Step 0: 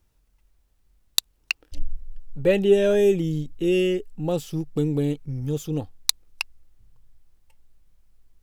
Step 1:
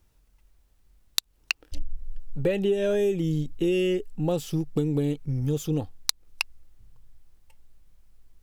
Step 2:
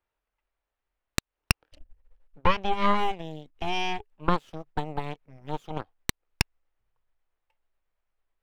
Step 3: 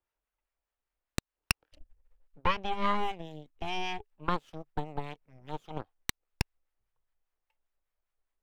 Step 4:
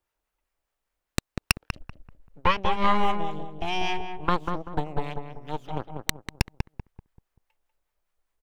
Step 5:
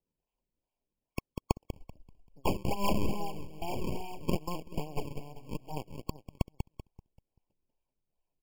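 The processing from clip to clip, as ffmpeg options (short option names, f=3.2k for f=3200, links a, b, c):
-af "acompressor=threshold=-23dB:ratio=12,volume=2.5dB"
-filter_complex "[0:a]acrossover=split=450 3000:gain=0.112 1 0.1[a][b][c];[a][b][c]amix=inputs=3:normalize=0,aeval=exprs='0.299*(cos(1*acos(clip(val(0)/0.299,-1,1)))-cos(1*PI/2))+0.106*(cos(4*acos(clip(val(0)/0.299,-1,1)))-cos(4*PI/2))+0.0299*(cos(7*acos(clip(val(0)/0.299,-1,1)))-cos(7*PI/2))+0.075*(cos(8*acos(clip(val(0)/0.299,-1,1)))-cos(8*PI/2))':c=same,volume=2.5dB"
-filter_complex "[0:a]acrossover=split=880[a][b];[a]aeval=exprs='val(0)*(1-0.5/2+0.5/2*cos(2*PI*5*n/s))':c=same[c];[b]aeval=exprs='val(0)*(1-0.5/2-0.5/2*cos(2*PI*5*n/s))':c=same[d];[c][d]amix=inputs=2:normalize=0,volume=-3dB"
-filter_complex "[0:a]asplit=2[a][b];[b]adelay=193,lowpass=f=1.2k:p=1,volume=-4.5dB,asplit=2[c][d];[d]adelay=193,lowpass=f=1.2k:p=1,volume=0.37,asplit=2[e][f];[f]adelay=193,lowpass=f=1.2k:p=1,volume=0.37,asplit=2[g][h];[h]adelay=193,lowpass=f=1.2k:p=1,volume=0.37,asplit=2[i][j];[j]adelay=193,lowpass=f=1.2k:p=1,volume=0.37[k];[a][c][e][g][i][k]amix=inputs=6:normalize=0,volume=6dB"
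-af "acrusher=samples=35:mix=1:aa=0.000001:lfo=1:lforange=56:lforate=2.4,afftfilt=real='re*eq(mod(floor(b*sr/1024/1100),2),0)':imag='im*eq(mod(floor(b*sr/1024/1100),2),0)':win_size=1024:overlap=0.75,volume=-6.5dB"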